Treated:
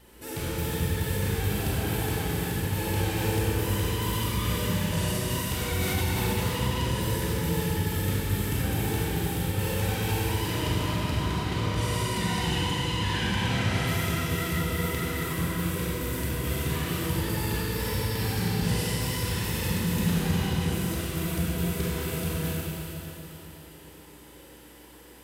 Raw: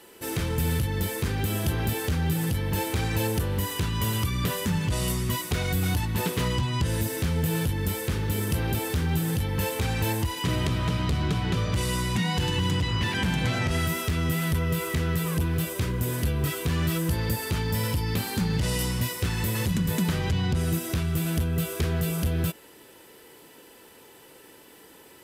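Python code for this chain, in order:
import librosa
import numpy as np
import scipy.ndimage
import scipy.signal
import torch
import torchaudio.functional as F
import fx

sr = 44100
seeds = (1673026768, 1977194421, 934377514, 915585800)

y = fx.dmg_buzz(x, sr, base_hz=60.0, harmonics=5, level_db=-50.0, tilt_db=-5, odd_only=False)
y = fx.vibrato(y, sr, rate_hz=12.0, depth_cents=70.0)
y = fx.rev_schroeder(y, sr, rt60_s=3.6, comb_ms=31, drr_db=-6.5)
y = fx.env_flatten(y, sr, amount_pct=50, at=(5.81, 6.33))
y = F.gain(torch.from_numpy(y), -7.5).numpy()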